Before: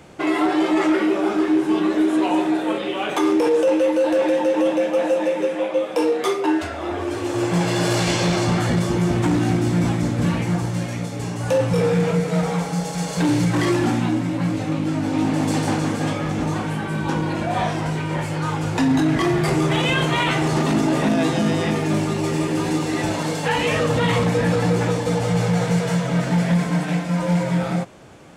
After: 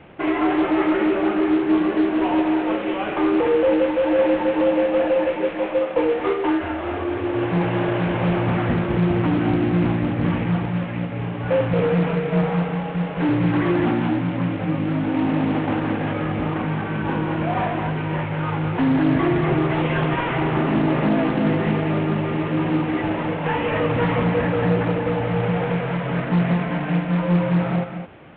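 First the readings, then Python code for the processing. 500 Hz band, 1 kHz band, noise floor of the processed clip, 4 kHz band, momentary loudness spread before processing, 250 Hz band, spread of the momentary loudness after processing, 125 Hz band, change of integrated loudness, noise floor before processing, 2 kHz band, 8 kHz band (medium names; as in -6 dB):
-0.5 dB, -0.5 dB, -28 dBFS, -7.5 dB, 5 LU, 0.0 dB, 5 LU, -1.0 dB, -0.5 dB, -28 dBFS, -1.0 dB, under -40 dB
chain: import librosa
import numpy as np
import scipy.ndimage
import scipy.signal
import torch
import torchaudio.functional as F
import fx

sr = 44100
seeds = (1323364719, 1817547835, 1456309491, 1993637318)

p1 = fx.cvsd(x, sr, bps=16000)
p2 = p1 + fx.echo_single(p1, sr, ms=216, db=-8.0, dry=0)
y = fx.doppler_dist(p2, sr, depth_ms=0.23)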